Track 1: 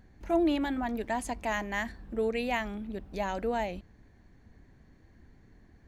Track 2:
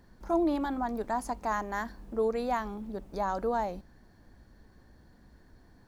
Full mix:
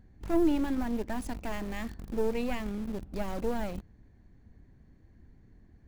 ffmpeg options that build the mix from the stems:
-filter_complex "[0:a]volume=0.422[s0];[1:a]acrusher=bits=4:dc=4:mix=0:aa=0.000001,volume=0.501[s1];[s0][s1]amix=inputs=2:normalize=0,lowshelf=f=400:g=9"

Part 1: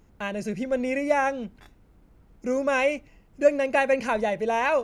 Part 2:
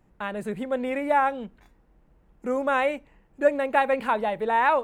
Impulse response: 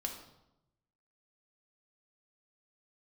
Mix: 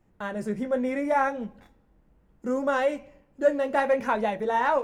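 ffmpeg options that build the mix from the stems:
-filter_complex "[0:a]asoftclip=type=tanh:threshold=0.224,volume=0.447,asplit=2[s0][s1];[s1]volume=0.473[s2];[1:a]volume=1.06,asplit=2[s3][s4];[s4]apad=whole_len=213213[s5];[s0][s5]sidechaingate=range=0.0224:threshold=0.00224:ratio=16:detection=peak[s6];[2:a]atrim=start_sample=2205[s7];[s2][s7]afir=irnorm=-1:irlink=0[s8];[s6][s3][s8]amix=inputs=3:normalize=0,flanger=delay=8.7:depth=8.3:regen=-46:speed=0.7:shape=triangular"

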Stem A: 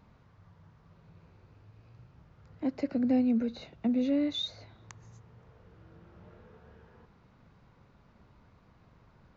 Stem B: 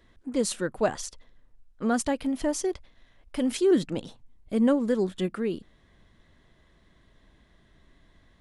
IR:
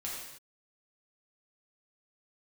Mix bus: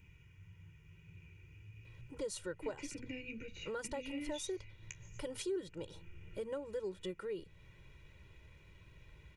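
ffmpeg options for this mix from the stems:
-filter_complex "[0:a]flanger=delay=9.9:depth=4.5:regen=-52:speed=1.7:shape=triangular,firequalizer=gain_entry='entry(300,0);entry(550,-20);entry(1300,-12);entry(2500,14);entry(4100,-13);entry(6600,6)':delay=0.05:min_phase=1,volume=1.19[s0];[1:a]alimiter=limit=0.15:level=0:latency=1:release=491,adelay=1850,volume=0.447[s1];[s0][s1]amix=inputs=2:normalize=0,aecho=1:1:2.1:0.96,acompressor=threshold=0.00562:ratio=2"

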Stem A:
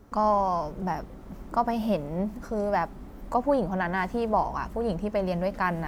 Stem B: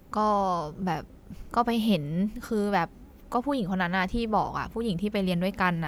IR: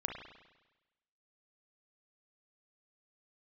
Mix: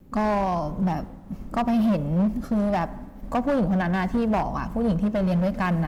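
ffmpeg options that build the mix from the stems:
-filter_complex "[0:a]agate=range=0.0224:threshold=0.0141:ratio=3:detection=peak,volume=0.75,asplit=3[s0][s1][s2];[s1]volume=0.251[s3];[1:a]equalizer=f=240:w=1.3:g=6,acontrast=83,volume=-1,adelay=2.3,volume=0.237[s4];[s2]apad=whole_len=259267[s5];[s4][s5]sidechaincompress=threshold=0.0355:ratio=8:attack=6.8:release=193[s6];[2:a]atrim=start_sample=2205[s7];[s3][s7]afir=irnorm=-1:irlink=0[s8];[s0][s6][s8]amix=inputs=3:normalize=0,lowshelf=f=330:g=7.5,asoftclip=type=hard:threshold=0.126"

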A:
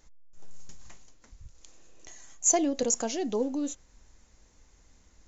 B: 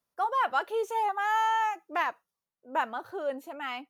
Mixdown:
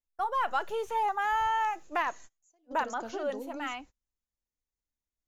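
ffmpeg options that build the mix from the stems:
-filter_complex "[0:a]acompressor=threshold=0.0126:ratio=2.5,volume=0.794[s0];[1:a]agate=range=0.0224:threshold=0.00794:ratio=3:detection=peak,dynaudnorm=f=110:g=7:m=1.5,volume=0.75,asplit=2[s1][s2];[s2]apad=whole_len=232678[s3];[s0][s3]sidechaingate=range=0.0224:threshold=0.00316:ratio=16:detection=peak[s4];[s4][s1]amix=inputs=2:normalize=0,acrossover=split=620|4300[s5][s6][s7];[s5]acompressor=threshold=0.0178:ratio=4[s8];[s6]acompressor=threshold=0.0447:ratio=4[s9];[s7]acompressor=threshold=0.00158:ratio=4[s10];[s8][s9][s10]amix=inputs=3:normalize=0"

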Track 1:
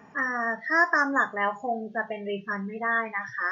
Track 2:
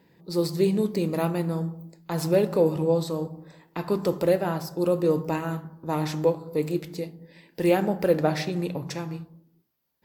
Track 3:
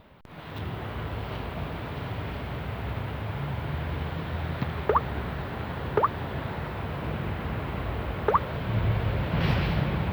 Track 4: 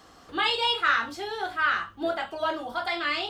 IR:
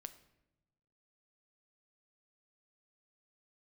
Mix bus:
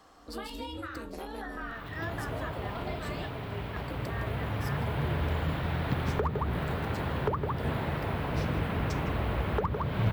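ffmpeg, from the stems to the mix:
-filter_complex "[0:a]adelay=1250,volume=0.211[s0];[1:a]acompressor=threshold=0.0501:ratio=6,aeval=exprs='val(0)*sin(2*PI*120*n/s)':c=same,volume=0.596,asplit=2[s1][s2];[s2]volume=0.119[s3];[2:a]adelay=1300,volume=0.75,asplit=3[s4][s5][s6];[s5]volume=0.668[s7];[s6]volume=0.668[s8];[3:a]equalizer=f=810:w=0.74:g=6.5,acompressor=threshold=0.0251:ratio=6,volume=0.355,asplit=2[s9][s10];[s10]apad=whole_len=503960[s11];[s4][s11]sidechaincompress=threshold=0.00158:ratio=8:attack=16:release=1380[s12];[s0][s1]amix=inputs=2:normalize=0,acompressor=threshold=0.0126:ratio=3,volume=1[s13];[4:a]atrim=start_sample=2205[s14];[s7][s14]afir=irnorm=-1:irlink=0[s15];[s3][s8]amix=inputs=2:normalize=0,aecho=0:1:160:1[s16];[s12][s9][s13][s15][s16]amix=inputs=5:normalize=0,equalizer=f=9700:w=1.5:g=3.5,acrossover=split=330[s17][s18];[s18]acompressor=threshold=0.0316:ratio=10[s19];[s17][s19]amix=inputs=2:normalize=0,aeval=exprs='clip(val(0),-1,0.0794)':c=same"

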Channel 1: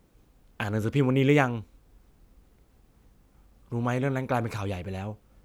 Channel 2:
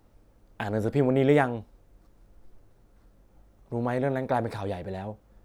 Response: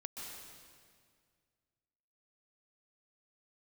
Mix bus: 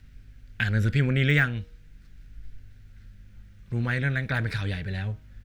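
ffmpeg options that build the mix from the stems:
-filter_complex "[0:a]aeval=exprs='val(0)+0.00282*(sin(2*PI*50*n/s)+sin(2*PI*2*50*n/s)/2+sin(2*PI*3*50*n/s)/3+sin(2*PI*4*50*n/s)/4+sin(2*PI*5*50*n/s)/5)':c=same,asplit=2[s0][s1];[s1]adelay=4.8,afreqshift=-0.41[s2];[s0][s2]amix=inputs=2:normalize=1,volume=0.447[s3];[1:a]deesser=0.9,firequalizer=gain_entry='entry(160,0);entry(290,-9);entry(920,-20);entry(1500,11);entry(2300,13);entry(9400,1)':delay=0.05:min_phase=1,adelay=0.5,volume=0.891,asplit=2[s4][s5];[s5]apad=whole_len=240248[s6];[s3][s6]sidechaincompress=threshold=0.0398:ratio=8:attack=16:release=689[s7];[s7][s4]amix=inputs=2:normalize=0,lowshelf=f=180:g=11,bandreject=f=158:t=h:w=4,bandreject=f=316:t=h:w=4,bandreject=f=474:t=h:w=4,bandreject=f=632:t=h:w=4,bandreject=f=790:t=h:w=4,bandreject=f=948:t=h:w=4,bandreject=f=1106:t=h:w=4,bandreject=f=1264:t=h:w=4"

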